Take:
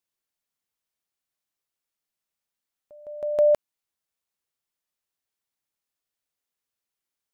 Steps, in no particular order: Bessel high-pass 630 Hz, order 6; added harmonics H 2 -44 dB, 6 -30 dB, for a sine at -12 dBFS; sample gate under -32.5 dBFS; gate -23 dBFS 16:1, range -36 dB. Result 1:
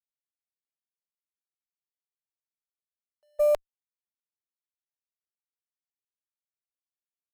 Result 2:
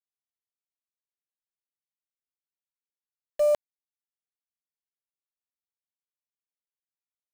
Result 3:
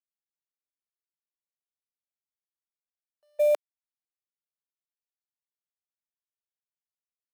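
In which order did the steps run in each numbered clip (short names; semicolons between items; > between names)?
sample gate > Bessel high-pass > gate > added harmonics; Bessel high-pass > added harmonics > gate > sample gate; added harmonics > sample gate > Bessel high-pass > gate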